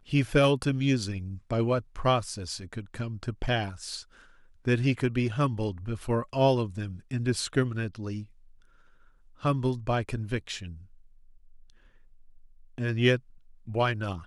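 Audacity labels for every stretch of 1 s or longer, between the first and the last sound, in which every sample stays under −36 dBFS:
8.230000	9.440000	silence
10.730000	12.780000	silence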